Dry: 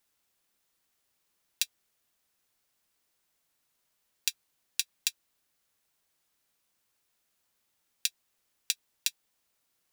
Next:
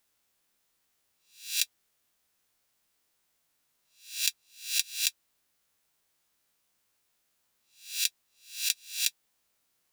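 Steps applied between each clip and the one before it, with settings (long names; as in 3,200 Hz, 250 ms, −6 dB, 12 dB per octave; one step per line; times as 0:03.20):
peak hold with a rise ahead of every peak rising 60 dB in 0.45 s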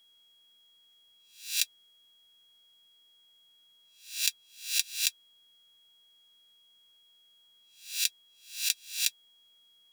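steady tone 3,300 Hz −61 dBFS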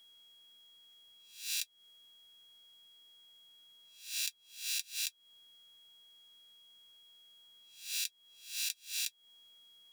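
downward compressor 12 to 1, threshold −35 dBFS, peak gain reduction 14.5 dB
level +2 dB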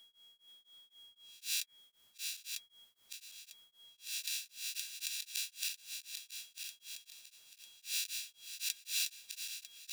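feedback delay that plays each chunk backwards 474 ms, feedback 70%, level −3 dB
hum removal 147.4 Hz, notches 16
tremolo along a rectified sine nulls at 3.9 Hz
level +1 dB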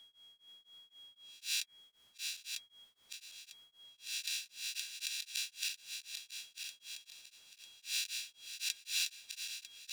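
high-shelf EQ 9,600 Hz −12 dB
level +3 dB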